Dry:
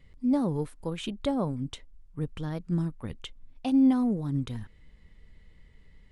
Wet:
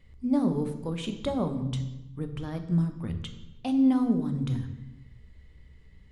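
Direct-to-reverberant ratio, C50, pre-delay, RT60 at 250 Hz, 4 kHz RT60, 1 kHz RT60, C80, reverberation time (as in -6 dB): 7.0 dB, 10.0 dB, 3 ms, no reading, 0.75 s, 0.95 s, 12.0 dB, 1.1 s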